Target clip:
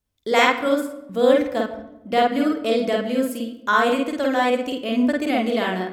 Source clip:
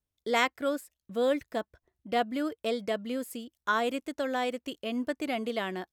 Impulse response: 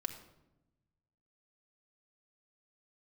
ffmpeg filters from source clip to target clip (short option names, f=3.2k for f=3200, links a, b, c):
-filter_complex "[0:a]asplit=2[a][b];[1:a]atrim=start_sample=2205,highshelf=f=6.3k:g=-9.5,adelay=49[c];[b][c]afir=irnorm=-1:irlink=0,volume=1.5dB[d];[a][d]amix=inputs=2:normalize=0,volume=6.5dB"